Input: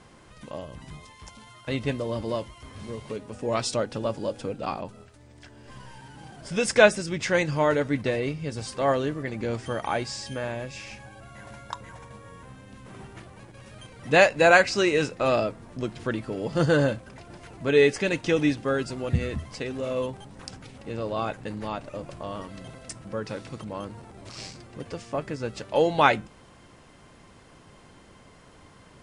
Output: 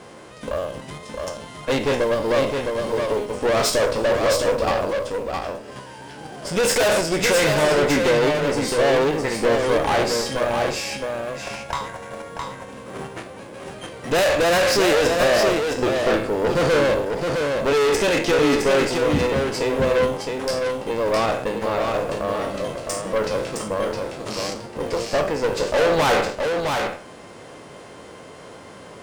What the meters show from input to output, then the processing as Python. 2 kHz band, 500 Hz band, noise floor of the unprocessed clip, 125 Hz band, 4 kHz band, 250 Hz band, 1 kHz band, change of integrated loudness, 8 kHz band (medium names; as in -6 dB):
+3.5 dB, +7.0 dB, -53 dBFS, +2.0 dB, +8.5 dB, +4.5 dB, +5.5 dB, +5.0 dB, +10.0 dB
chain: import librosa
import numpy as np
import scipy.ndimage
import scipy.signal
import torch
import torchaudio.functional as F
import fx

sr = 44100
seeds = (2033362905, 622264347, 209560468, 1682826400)

p1 = fx.spec_trails(x, sr, decay_s=0.43)
p2 = fx.level_steps(p1, sr, step_db=14)
p3 = p1 + F.gain(torch.from_numpy(p2), 0.5).numpy()
p4 = fx.highpass(p3, sr, hz=190.0, slope=6)
p5 = fx.peak_eq(p4, sr, hz=500.0, db=7.0, octaves=1.1)
p6 = fx.quant_float(p5, sr, bits=4)
p7 = fx.tube_stage(p6, sr, drive_db=24.0, bias=0.7)
p8 = p7 + fx.echo_single(p7, sr, ms=663, db=-4.5, dry=0)
p9 = fx.end_taper(p8, sr, db_per_s=140.0)
y = F.gain(torch.from_numpy(p9), 7.5).numpy()